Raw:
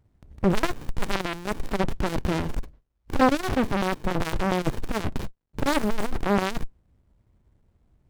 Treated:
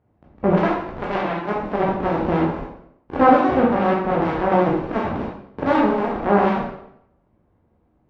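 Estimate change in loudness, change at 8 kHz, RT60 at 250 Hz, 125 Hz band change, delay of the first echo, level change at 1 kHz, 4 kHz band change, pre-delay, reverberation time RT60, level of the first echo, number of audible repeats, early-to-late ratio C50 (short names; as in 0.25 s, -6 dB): +7.0 dB, under -15 dB, 0.75 s, +3.5 dB, none, +9.0 dB, -4.5 dB, 12 ms, 0.75 s, none, none, 2.5 dB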